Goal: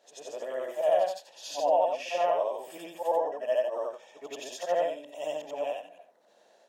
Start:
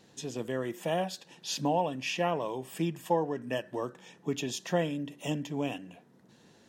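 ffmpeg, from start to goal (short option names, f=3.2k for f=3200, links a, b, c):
-af "afftfilt=real='re':imag='-im':win_size=8192:overlap=0.75,highpass=f=610:t=q:w=6.2"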